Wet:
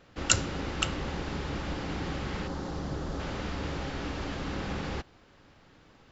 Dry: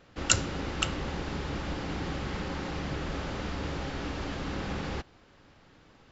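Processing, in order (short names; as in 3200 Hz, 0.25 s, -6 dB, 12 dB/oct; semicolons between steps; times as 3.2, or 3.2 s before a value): 2.47–3.2 bell 2400 Hz -11 dB 1.1 oct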